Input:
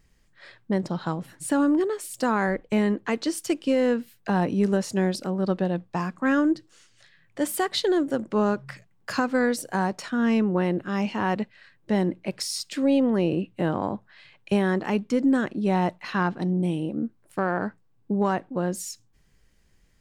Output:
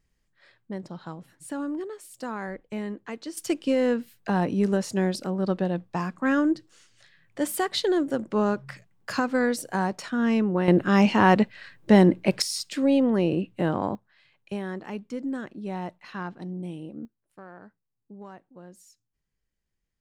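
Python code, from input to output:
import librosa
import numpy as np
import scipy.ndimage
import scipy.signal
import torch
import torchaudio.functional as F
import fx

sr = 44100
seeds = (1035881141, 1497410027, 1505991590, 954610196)

y = fx.gain(x, sr, db=fx.steps((0.0, -10.0), (3.37, -1.0), (10.68, 7.5), (12.42, 0.0), (13.95, -10.0), (17.05, -20.0)))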